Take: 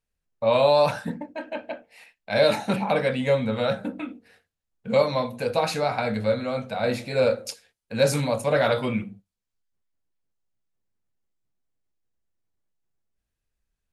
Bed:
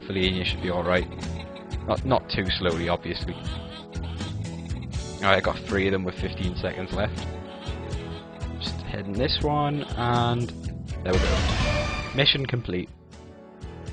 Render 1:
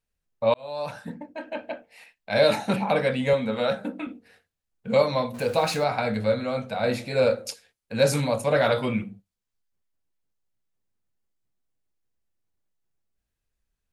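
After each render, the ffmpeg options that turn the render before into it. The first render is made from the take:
ffmpeg -i in.wav -filter_complex "[0:a]asettb=1/sr,asplit=3[link_01][link_02][link_03];[link_01]atrim=end=3.334[link_04];[link_02]atrim=start=3.33:end=4.07,asetpts=PTS-STARTPTS,afade=type=in:duration=0.004:curve=qsin,afade=type=out:start_time=0.736:duration=0.004:curve=qsin,highpass=180[link_05];[link_03]atrim=start=4.066[link_06];[link_04][link_05]acrossfade=duration=0.004:curve1=hsin:curve2=qsin[link_07];[link_07][link_06]acrossfade=duration=0.004:curve1=qsin:curve2=hsin,asettb=1/sr,asplit=3[link_08][link_09][link_10];[link_08]atrim=end=5.344[link_11];[link_09]atrim=start=5.34:end=5.84,asetpts=PTS-STARTPTS,afade=type=in:duration=0.004:curve=qsin,afade=type=out:start_time=0.496:duration=0.004:curve=qsin,aeval=exprs='val(0)+0.5*0.0126*sgn(val(0))':channel_layout=same[link_12];[link_10]atrim=start=5.836[link_13];[link_11][link_12]acrossfade=duration=0.004:curve1=hsin:curve2=qsin[link_14];[link_14][link_13]acrossfade=duration=0.004:curve1=qsin:curve2=hsin,asplit=2[link_15][link_16];[link_15]atrim=end=0.54,asetpts=PTS-STARTPTS,afade=type=out:start_time=0.536:duration=0.004:curve=hsin[link_17];[link_16]atrim=start=0.54,asetpts=PTS-STARTPTS,afade=type=in:duration=1.08[link_18];[link_17][link_18]concat=n=2:v=0:a=1" out.wav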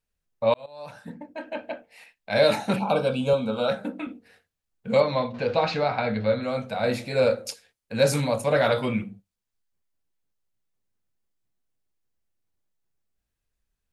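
ffmpeg -i in.wav -filter_complex "[0:a]asettb=1/sr,asplit=3[link_01][link_02][link_03];[link_01]atrim=end=2.794[link_04];[link_02]atrim=start=2.79:end=3.69,asetpts=PTS-STARTPTS,afade=type=in:duration=0.004:curve=qsin,afade=type=out:start_time=0.896:duration=0.004:curve=qsin,asuperstop=centerf=1900:order=8:qfactor=2.4[link_05];[link_03]atrim=start=3.686[link_06];[link_04][link_05]acrossfade=duration=0.004:curve1=hsin:curve2=qsin[link_07];[link_07][link_06]acrossfade=duration=0.004:curve1=qsin:curve2=hsin,asettb=1/sr,asplit=3[link_08][link_09][link_10];[link_08]atrim=end=5.004[link_11];[link_09]atrim=start=5:end=6.43,asetpts=PTS-STARTPTS,afade=type=in:duration=0.004:curve=qsin,afade=type=out:start_time=1.426:duration=0.004:curve=qsin,lowpass=frequency=4500:width=0.5412,lowpass=frequency=4500:width=1.3066[link_12];[link_10]atrim=start=6.426[link_13];[link_11][link_12]acrossfade=duration=0.004:curve1=hsin:curve2=qsin[link_14];[link_14][link_13]acrossfade=duration=0.004:curve1=qsin:curve2=hsin,asplit=2[link_15][link_16];[link_15]atrim=end=0.66,asetpts=PTS-STARTPTS,afade=type=out:start_time=0.656:duration=0.004:curve=hsin:silence=0.177828[link_17];[link_16]atrim=start=0.66,asetpts=PTS-STARTPTS,afade=type=in:duration=0.68:silence=0.177828[link_18];[link_17][link_18]concat=n=2:v=0:a=1" out.wav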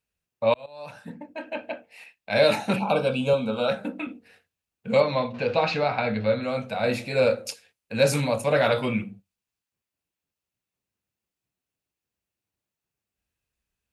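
ffmpeg -i in.wav -af "highpass=56,equalizer=frequency=2600:width=5.1:gain=6.5" out.wav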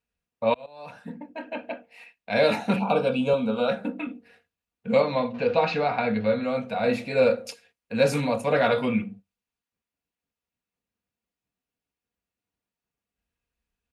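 ffmpeg -i in.wav -af "highshelf=frequency=4300:gain=-9,aecho=1:1:4.2:0.4" out.wav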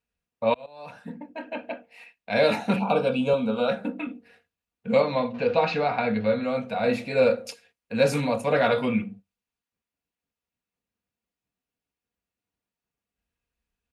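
ffmpeg -i in.wav -af anull out.wav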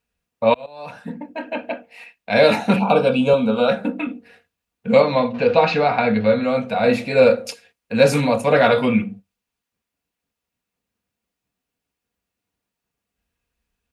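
ffmpeg -i in.wav -af "volume=7dB,alimiter=limit=-2dB:level=0:latency=1" out.wav

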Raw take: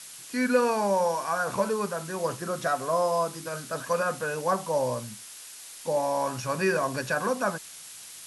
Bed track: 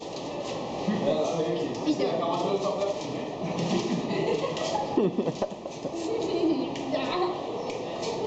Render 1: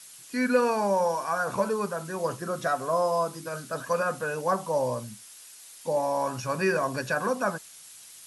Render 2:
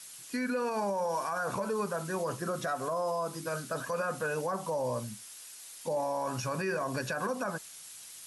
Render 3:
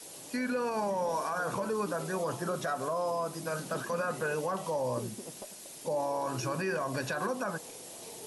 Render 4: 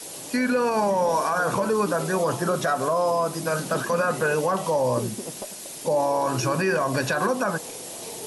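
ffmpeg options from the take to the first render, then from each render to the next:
ffmpeg -i in.wav -af "afftdn=noise_reduction=6:noise_floor=-45" out.wav
ffmpeg -i in.wav -af "acompressor=threshold=-26dB:ratio=4,alimiter=limit=-24dB:level=0:latency=1:release=28" out.wav
ffmpeg -i in.wav -i bed.wav -filter_complex "[1:a]volume=-18dB[link_01];[0:a][link_01]amix=inputs=2:normalize=0" out.wav
ffmpeg -i in.wav -af "volume=9.5dB" out.wav

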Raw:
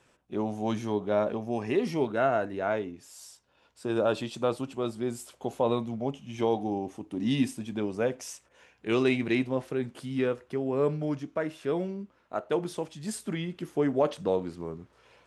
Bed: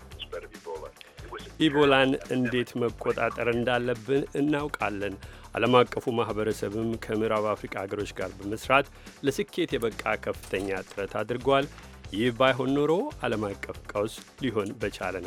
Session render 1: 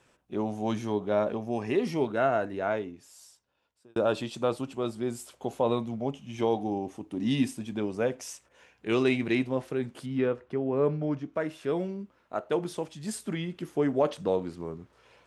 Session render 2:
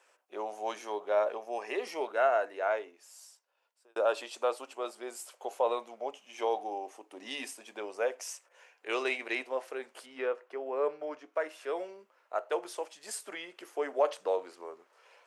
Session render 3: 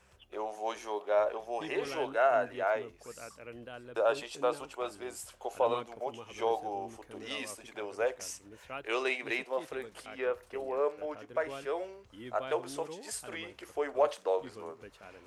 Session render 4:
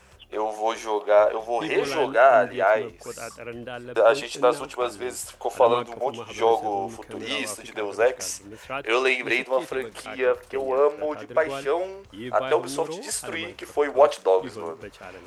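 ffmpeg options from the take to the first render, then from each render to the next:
ffmpeg -i in.wav -filter_complex "[0:a]asettb=1/sr,asplit=3[link_01][link_02][link_03];[link_01]atrim=end=10.064[link_04];[link_02]atrim=start=10.06:end=11.34,asetpts=PTS-STARTPTS,afade=type=in:duration=0.004:curve=qsin,afade=type=out:start_time=1.276:duration=0.004:curve=qsin,aemphasis=mode=reproduction:type=75fm[link_05];[link_03]atrim=start=11.336[link_06];[link_04][link_05]acrossfade=duration=0.004:curve1=hsin:curve2=qsin[link_07];[link_07][link_06]acrossfade=duration=0.004:curve1=qsin:curve2=hsin,asplit=2[link_08][link_09];[link_08]atrim=end=3.96,asetpts=PTS-STARTPTS,afade=type=out:start_time=2.66:duration=1.3[link_10];[link_09]atrim=start=3.96,asetpts=PTS-STARTPTS,afade=type=in:duration=0.004:curve=hsin[link_11];[link_10][link_11]concat=n=2:v=0:a=1" out.wav
ffmpeg -i in.wav -af "highpass=frequency=490:width=0.5412,highpass=frequency=490:width=1.3066,equalizer=frequency=3600:width_type=o:width=0.35:gain=-5" out.wav
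ffmpeg -i in.wav -i bed.wav -filter_complex "[1:a]volume=-20.5dB[link_01];[0:a][link_01]amix=inputs=2:normalize=0" out.wav
ffmpeg -i in.wav -af "volume=10.5dB" out.wav

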